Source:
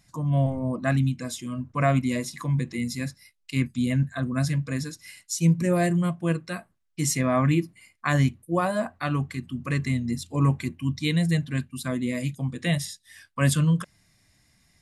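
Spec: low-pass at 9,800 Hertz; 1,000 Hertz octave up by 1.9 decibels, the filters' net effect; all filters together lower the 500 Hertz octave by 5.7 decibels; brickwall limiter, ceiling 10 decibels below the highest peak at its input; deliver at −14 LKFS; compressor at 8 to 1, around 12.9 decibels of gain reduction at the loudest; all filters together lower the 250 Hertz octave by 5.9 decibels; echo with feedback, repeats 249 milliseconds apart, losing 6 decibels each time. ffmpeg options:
ffmpeg -i in.wav -af "lowpass=9800,equalizer=frequency=250:width_type=o:gain=-8,equalizer=frequency=500:width_type=o:gain=-8.5,equalizer=frequency=1000:width_type=o:gain=5.5,acompressor=threshold=-33dB:ratio=8,alimiter=level_in=5.5dB:limit=-24dB:level=0:latency=1,volume=-5.5dB,aecho=1:1:249|498|747|996|1245|1494:0.501|0.251|0.125|0.0626|0.0313|0.0157,volume=24.5dB" out.wav

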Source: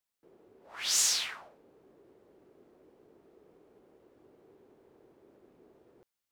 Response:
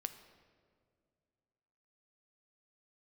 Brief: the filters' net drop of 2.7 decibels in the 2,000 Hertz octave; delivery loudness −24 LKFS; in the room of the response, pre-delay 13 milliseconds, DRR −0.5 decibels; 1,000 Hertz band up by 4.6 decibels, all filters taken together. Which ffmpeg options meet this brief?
-filter_complex "[0:a]equalizer=frequency=1000:width_type=o:gain=7.5,equalizer=frequency=2000:width_type=o:gain=-5.5,asplit=2[link_01][link_02];[1:a]atrim=start_sample=2205,adelay=13[link_03];[link_02][link_03]afir=irnorm=-1:irlink=0,volume=2.5dB[link_04];[link_01][link_04]amix=inputs=2:normalize=0,volume=1.5dB"

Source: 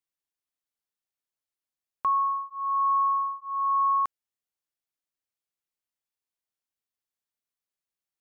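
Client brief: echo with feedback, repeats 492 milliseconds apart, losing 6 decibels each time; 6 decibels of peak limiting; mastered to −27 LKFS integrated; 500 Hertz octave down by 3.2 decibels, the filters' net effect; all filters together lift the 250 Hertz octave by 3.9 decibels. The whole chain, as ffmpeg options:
ffmpeg -i in.wav -af "equalizer=frequency=250:width_type=o:gain=7,equalizer=frequency=500:width_type=o:gain=-6,alimiter=level_in=2dB:limit=-24dB:level=0:latency=1,volume=-2dB,aecho=1:1:492|984|1476|1968|2460|2952:0.501|0.251|0.125|0.0626|0.0313|0.0157,volume=4dB" out.wav

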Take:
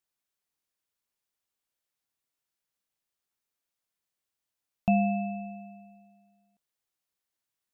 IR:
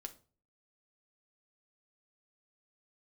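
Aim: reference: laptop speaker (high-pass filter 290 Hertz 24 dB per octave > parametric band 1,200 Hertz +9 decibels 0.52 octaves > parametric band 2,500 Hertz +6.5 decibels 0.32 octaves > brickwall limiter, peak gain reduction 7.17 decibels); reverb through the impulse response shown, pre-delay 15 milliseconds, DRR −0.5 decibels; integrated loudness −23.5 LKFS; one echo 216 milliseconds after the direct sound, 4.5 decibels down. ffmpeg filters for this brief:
-filter_complex "[0:a]aecho=1:1:216:0.596,asplit=2[link_01][link_02];[1:a]atrim=start_sample=2205,adelay=15[link_03];[link_02][link_03]afir=irnorm=-1:irlink=0,volume=5dB[link_04];[link_01][link_04]amix=inputs=2:normalize=0,highpass=frequency=290:width=0.5412,highpass=frequency=290:width=1.3066,equalizer=frequency=1200:width_type=o:width=0.52:gain=9,equalizer=frequency=2500:width_type=o:width=0.32:gain=6.5,volume=13dB,alimiter=limit=-11.5dB:level=0:latency=1"

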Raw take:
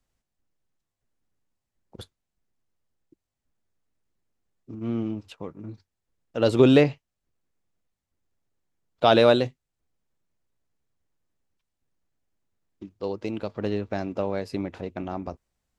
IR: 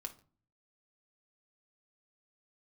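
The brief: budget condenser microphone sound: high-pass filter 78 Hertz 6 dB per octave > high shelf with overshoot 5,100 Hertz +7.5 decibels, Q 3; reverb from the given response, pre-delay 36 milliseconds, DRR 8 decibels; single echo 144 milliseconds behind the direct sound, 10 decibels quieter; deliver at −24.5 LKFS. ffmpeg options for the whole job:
-filter_complex "[0:a]aecho=1:1:144:0.316,asplit=2[link_01][link_02];[1:a]atrim=start_sample=2205,adelay=36[link_03];[link_02][link_03]afir=irnorm=-1:irlink=0,volume=-5dB[link_04];[link_01][link_04]amix=inputs=2:normalize=0,highpass=frequency=78:poles=1,highshelf=frequency=5100:width_type=q:width=3:gain=7.5,volume=-0.5dB"

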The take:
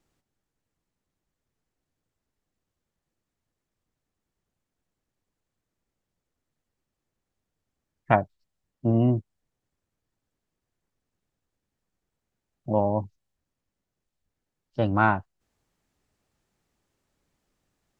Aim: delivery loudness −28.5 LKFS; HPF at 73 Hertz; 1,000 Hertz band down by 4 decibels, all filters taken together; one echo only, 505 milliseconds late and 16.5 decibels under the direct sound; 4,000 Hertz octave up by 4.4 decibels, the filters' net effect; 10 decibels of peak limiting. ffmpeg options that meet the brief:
ffmpeg -i in.wav -af "highpass=73,equalizer=frequency=1000:width_type=o:gain=-6,equalizer=frequency=4000:width_type=o:gain=7,alimiter=limit=-15.5dB:level=0:latency=1,aecho=1:1:505:0.15,volume=0.5dB" out.wav

